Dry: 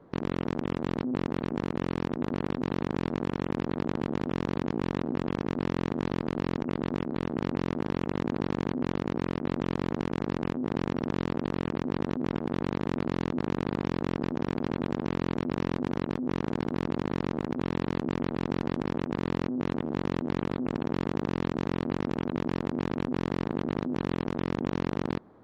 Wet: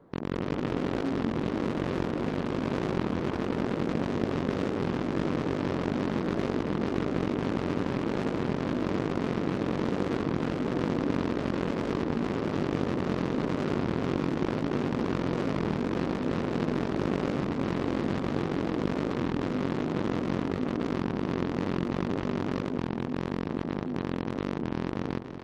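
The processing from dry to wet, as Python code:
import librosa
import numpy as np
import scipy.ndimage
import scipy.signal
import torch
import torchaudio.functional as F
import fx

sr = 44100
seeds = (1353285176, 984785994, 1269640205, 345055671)

y = fx.echo_pitch(x, sr, ms=198, semitones=2, count=3, db_per_echo=-3.0)
y = fx.echo_split(y, sr, split_hz=530.0, low_ms=202, high_ms=289, feedback_pct=52, wet_db=-9.0)
y = fx.record_warp(y, sr, rpm=33.33, depth_cents=160.0)
y = F.gain(torch.from_numpy(y), -2.0).numpy()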